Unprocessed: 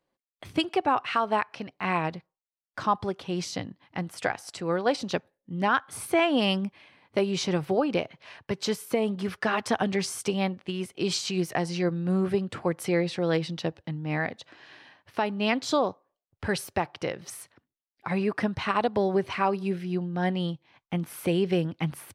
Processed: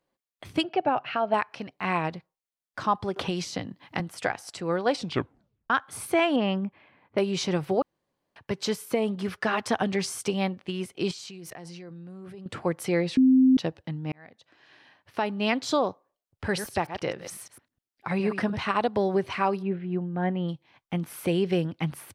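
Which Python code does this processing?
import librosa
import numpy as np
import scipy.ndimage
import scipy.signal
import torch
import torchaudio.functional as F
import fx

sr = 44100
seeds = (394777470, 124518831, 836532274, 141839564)

y = fx.cabinet(x, sr, low_hz=130.0, low_slope=12, high_hz=4200.0, hz=(140.0, 420.0, 630.0, 1100.0, 2000.0, 3700.0), db=(10, -3, 7, -9, -5, -8), at=(0.63, 1.34))
y = fx.band_squash(y, sr, depth_pct=100, at=(3.16, 4.0))
y = fx.lowpass(y, sr, hz=2000.0, slope=12, at=(6.36, 7.18))
y = fx.level_steps(y, sr, step_db=21, at=(11.11, 12.46))
y = fx.reverse_delay(y, sr, ms=102, wet_db=-9, at=(16.46, 18.61))
y = fx.gaussian_blur(y, sr, sigma=3.3, at=(19.61, 20.48), fade=0.02)
y = fx.edit(y, sr, fx.tape_stop(start_s=4.97, length_s=0.73),
    fx.room_tone_fill(start_s=7.82, length_s=0.54),
    fx.bleep(start_s=13.17, length_s=0.4, hz=260.0, db=-14.5),
    fx.fade_in_span(start_s=14.12, length_s=1.17), tone=tone)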